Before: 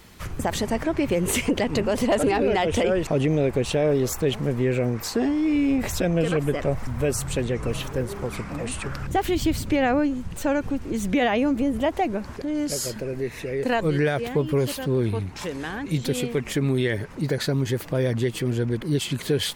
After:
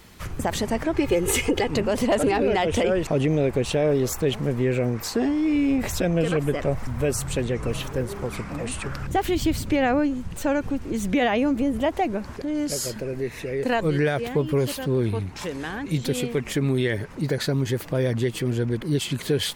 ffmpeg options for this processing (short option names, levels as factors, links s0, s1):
-filter_complex "[0:a]asettb=1/sr,asplit=3[s0][s1][s2];[s0]atrim=end=0.944[s3];[s1]atrim=start=0.94:end=1.69,asetpts=PTS-STARTPTS,afade=t=in:d=0.004:c=qsin,afade=t=out:st=0.746:d=0.004:c=qsin,aecho=1:1:2.4:0.64,atrim=end_sample=33075[s4];[s2]atrim=start=1.686[s5];[s3][s4]acrossfade=d=0.004:c1=hsin:c2=qsin[s6];[s6][s5]acrossfade=d=0.004:c1=qsin:c2=hsin"